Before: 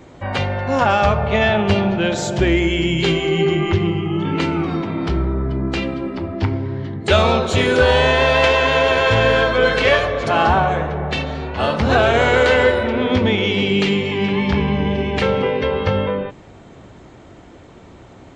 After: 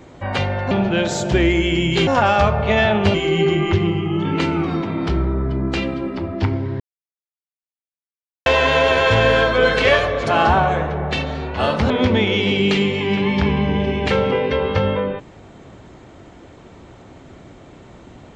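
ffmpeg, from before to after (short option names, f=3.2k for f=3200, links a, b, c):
-filter_complex "[0:a]asplit=7[a][b][c][d][e][f][g];[a]atrim=end=0.712[h];[b]atrim=start=1.778:end=3.142[i];[c]atrim=start=0.708:end=1.782[j];[d]atrim=start=3.138:end=6.8,asetpts=PTS-STARTPTS,afade=t=out:st=3.658:d=0.004:c=hsin[k];[e]atrim=start=6.8:end=8.46,asetpts=PTS-STARTPTS,volume=0[l];[f]atrim=start=8.46:end=11.902,asetpts=PTS-STARTPTS,afade=t=in:d=0.004:c=hsin[m];[g]atrim=start=13.008[n];[h][i]acrossfade=d=0.004:c1=hsin:c2=hsin[o];[o][j]acrossfade=d=0.004:c1=hsin:c2=hsin[p];[k][l][m]concat=n=3:v=0:a=1[q];[p][q]acrossfade=d=0.004:c1=hsin:c2=hsin[r];[r][n]acrossfade=d=0.004:c1=hsin:c2=hsin"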